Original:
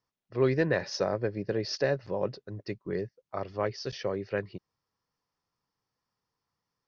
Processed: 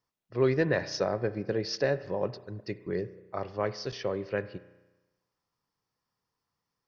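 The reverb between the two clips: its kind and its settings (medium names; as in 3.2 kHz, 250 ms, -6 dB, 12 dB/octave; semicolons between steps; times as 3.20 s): spring tank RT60 1.1 s, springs 33 ms, chirp 70 ms, DRR 14 dB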